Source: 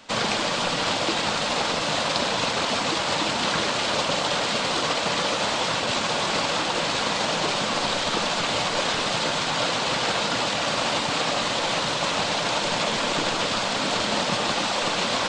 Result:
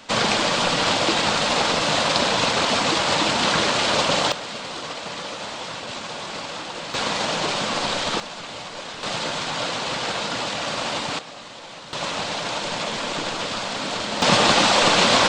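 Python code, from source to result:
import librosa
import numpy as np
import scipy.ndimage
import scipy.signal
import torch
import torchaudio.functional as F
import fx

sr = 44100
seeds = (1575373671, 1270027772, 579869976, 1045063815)

y = fx.gain(x, sr, db=fx.steps((0.0, 4.0), (4.32, -7.5), (6.94, 0.5), (8.2, -10.0), (9.03, -2.0), (11.19, -14.5), (11.93, -2.5), (14.22, 8.0)))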